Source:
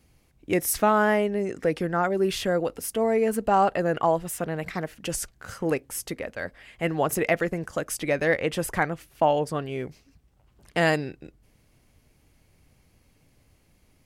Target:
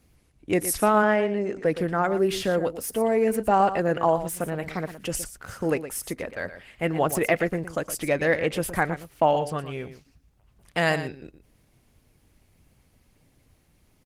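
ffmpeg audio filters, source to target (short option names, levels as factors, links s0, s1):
-filter_complex "[0:a]asplit=3[s0][s1][s2];[s0]afade=t=out:st=1.02:d=0.02[s3];[s1]highpass=160,lowpass=5700,afade=t=in:st=1.02:d=0.02,afade=t=out:st=1.64:d=0.02[s4];[s2]afade=t=in:st=1.64:d=0.02[s5];[s3][s4][s5]amix=inputs=3:normalize=0,asettb=1/sr,asplit=3[s6][s7][s8];[s6]atrim=end=9.374[s9];[s7]atrim=start=9.37:end=11.05,asetpts=PTS-STARTPTS,afade=t=in:d=0.004:c=qsin,afade=t=out:st=1.676:d=0.004:c=qsin,equalizer=f=320:w=0.93:g=-5[s10];[s8]atrim=start=11.046[s11];[s9][s10]acrossfade=d=0.004:c1=hsin:c2=qsin[s12];[s12][s11]acrossfade=d=0.004:c1=qsin:c2=hsin,aecho=1:1:117:0.251,volume=1.12" -ar 48000 -c:a libopus -b:a 20k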